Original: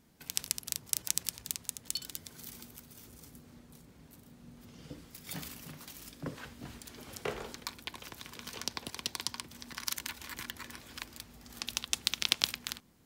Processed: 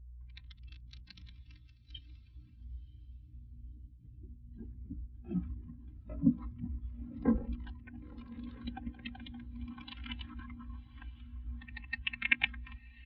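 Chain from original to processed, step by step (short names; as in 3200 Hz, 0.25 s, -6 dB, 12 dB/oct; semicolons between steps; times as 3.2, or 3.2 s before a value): low shelf 130 Hz +9 dB; notches 50/100/150/200/250/300/350/400/450/500 Hz; comb 3.8 ms, depth 92%; echoes that change speed 0.338 s, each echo +4 st, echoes 2, each echo -6 dB; hum 60 Hz, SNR 10 dB; formant shift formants -6 st; air absorption 260 m; diffused feedback echo 1.016 s, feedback 51%, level -8 dB; spectral expander 2.5:1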